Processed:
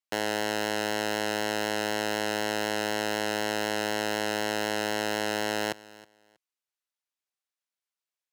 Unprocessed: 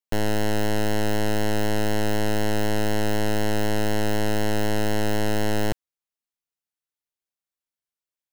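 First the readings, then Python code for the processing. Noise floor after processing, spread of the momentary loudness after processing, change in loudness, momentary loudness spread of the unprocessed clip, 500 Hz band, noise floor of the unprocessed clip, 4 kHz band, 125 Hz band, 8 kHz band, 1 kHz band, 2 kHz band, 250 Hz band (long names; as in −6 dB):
below −85 dBFS, 0 LU, −3.5 dB, 0 LU, −4.0 dB, below −85 dBFS, +1.0 dB, −16.5 dB, −1.0 dB, −1.0 dB, +1.0 dB, −8.0 dB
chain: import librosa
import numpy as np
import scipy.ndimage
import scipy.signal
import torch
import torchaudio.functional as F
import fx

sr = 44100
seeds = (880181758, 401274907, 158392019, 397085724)

y = fx.weighting(x, sr, curve='A')
y = fx.echo_feedback(y, sr, ms=320, feedback_pct=19, wet_db=-20.5)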